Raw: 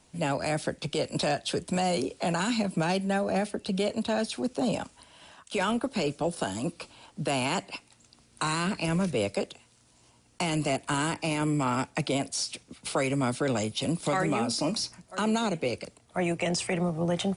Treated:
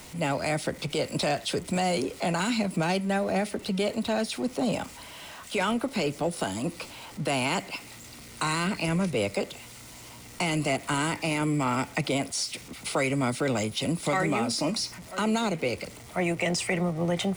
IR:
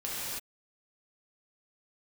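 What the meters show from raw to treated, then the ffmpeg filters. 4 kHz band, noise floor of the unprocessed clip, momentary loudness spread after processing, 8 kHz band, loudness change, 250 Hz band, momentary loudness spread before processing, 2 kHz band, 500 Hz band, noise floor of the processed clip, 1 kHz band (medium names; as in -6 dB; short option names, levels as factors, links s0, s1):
+1.5 dB, -62 dBFS, 11 LU, +1.5 dB, +1.0 dB, +0.5 dB, 7 LU, +3.0 dB, +0.5 dB, -46 dBFS, +1.0 dB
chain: -af "aeval=exprs='val(0)+0.5*0.00841*sgn(val(0))':c=same,equalizer=f=2000:w=3.5:g=6.5,bandreject=f=1700:w=10"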